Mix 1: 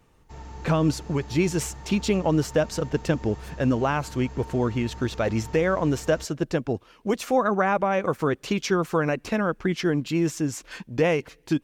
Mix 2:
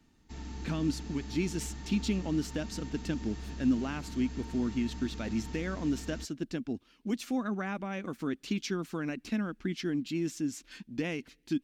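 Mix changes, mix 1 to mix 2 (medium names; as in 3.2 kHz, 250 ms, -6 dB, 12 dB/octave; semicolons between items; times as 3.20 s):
speech -9.5 dB; master: add ten-band graphic EQ 125 Hz -8 dB, 250 Hz +11 dB, 500 Hz -10 dB, 1 kHz -7 dB, 4 kHz +4 dB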